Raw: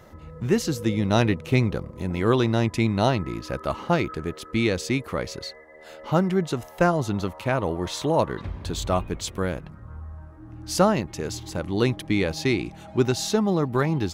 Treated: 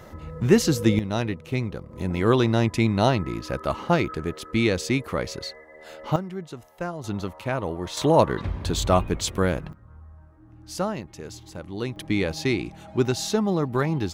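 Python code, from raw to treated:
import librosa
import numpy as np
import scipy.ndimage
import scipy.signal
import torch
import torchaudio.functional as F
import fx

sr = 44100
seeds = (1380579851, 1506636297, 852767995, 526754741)

y = fx.gain(x, sr, db=fx.steps((0.0, 4.5), (0.99, -6.0), (1.91, 1.0), (6.16, -11.0), (7.04, -3.0), (7.97, 4.0), (9.73, -8.0), (11.96, -1.0)))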